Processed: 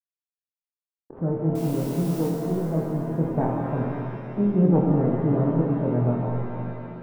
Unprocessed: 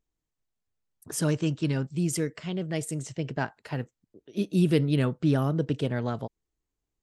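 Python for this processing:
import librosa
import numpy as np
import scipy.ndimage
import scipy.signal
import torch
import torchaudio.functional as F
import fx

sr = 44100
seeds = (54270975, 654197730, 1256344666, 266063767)

y = fx.self_delay(x, sr, depth_ms=0.36)
y = fx.rider(y, sr, range_db=10, speed_s=2.0)
y = fx.backlash(y, sr, play_db=-32.5)
y = scipy.signal.sosfilt(scipy.signal.butter(4, 1000.0, 'lowpass', fs=sr, output='sos'), y)
y = fx.quant_dither(y, sr, seeds[0], bits=8, dither='triangular', at=(1.55, 2.28))
y = fx.room_flutter(y, sr, wall_m=4.2, rt60_s=0.29)
y = fx.rev_shimmer(y, sr, seeds[1], rt60_s=2.7, semitones=7, shimmer_db=-8, drr_db=0.0)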